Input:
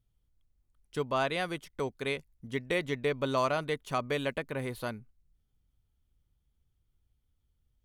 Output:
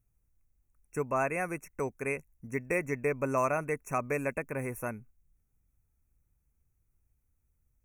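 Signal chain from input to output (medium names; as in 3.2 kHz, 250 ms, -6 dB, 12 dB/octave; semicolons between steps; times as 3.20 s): brick-wall FIR band-stop 2.7–5.5 kHz; treble shelf 8.2 kHz +8 dB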